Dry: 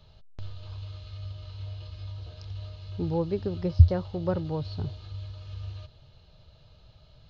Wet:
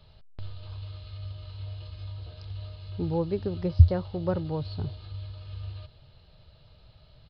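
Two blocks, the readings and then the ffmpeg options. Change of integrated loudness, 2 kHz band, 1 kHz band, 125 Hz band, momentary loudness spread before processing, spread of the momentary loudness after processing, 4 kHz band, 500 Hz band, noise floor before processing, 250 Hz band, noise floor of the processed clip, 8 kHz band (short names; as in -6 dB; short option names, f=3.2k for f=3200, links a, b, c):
0.0 dB, 0.0 dB, 0.0 dB, 0.0 dB, 20 LU, 20 LU, 0.0 dB, 0.0 dB, -57 dBFS, 0.0 dB, -57 dBFS, n/a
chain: -af "acrusher=bits=10:mix=0:aa=0.000001,aresample=11025,aresample=44100"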